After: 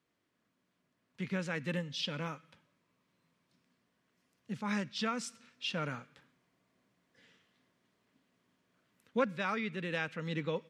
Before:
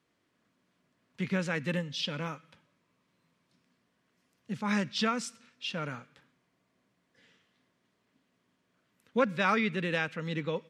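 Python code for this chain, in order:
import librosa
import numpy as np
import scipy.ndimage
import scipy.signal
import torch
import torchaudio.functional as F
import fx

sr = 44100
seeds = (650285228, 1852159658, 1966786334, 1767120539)

y = fx.rider(x, sr, range_db=4, speed_s=0.5)
y = y * librosa.db_to_amplitude(-4.5)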